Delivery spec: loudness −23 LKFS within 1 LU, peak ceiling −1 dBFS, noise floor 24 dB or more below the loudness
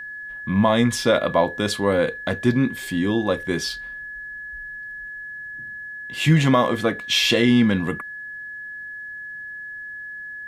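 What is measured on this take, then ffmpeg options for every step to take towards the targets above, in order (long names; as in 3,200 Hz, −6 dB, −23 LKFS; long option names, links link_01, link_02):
interfering tone 1,700 Hz; level of the tone −32 dBFS; integrated loudness −20.5 LKFS; sample peak −5.5 dBFS; target loudness −23.0 LKFS
→ -af "bandreject=frequency=1700:width=30"
-af "volume=-2.5dB"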